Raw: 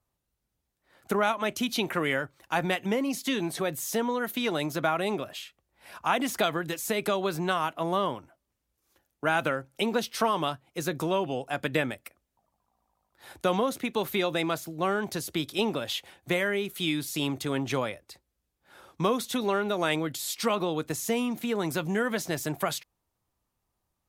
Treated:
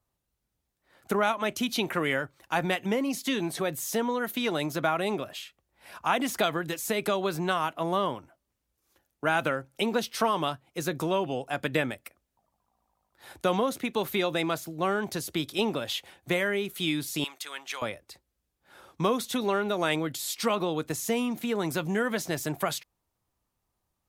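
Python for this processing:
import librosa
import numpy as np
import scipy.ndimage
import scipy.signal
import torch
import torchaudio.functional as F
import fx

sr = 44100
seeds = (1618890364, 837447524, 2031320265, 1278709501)

y = fx.highpass(x, sr, hz=1300.0, slope=12, at=(17.24, 17.82))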